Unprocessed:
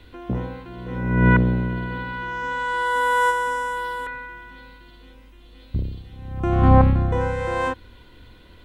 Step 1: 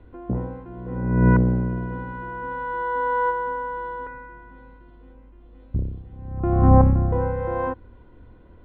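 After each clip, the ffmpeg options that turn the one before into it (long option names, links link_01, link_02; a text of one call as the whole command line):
ffmpeg -i in.wav -af "lowpass=1000" out.wav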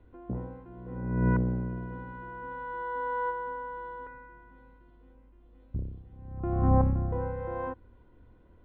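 ffmpeg -i in.wav -af "aresample=11025,aresample=44100,volume=-9dB" out.wav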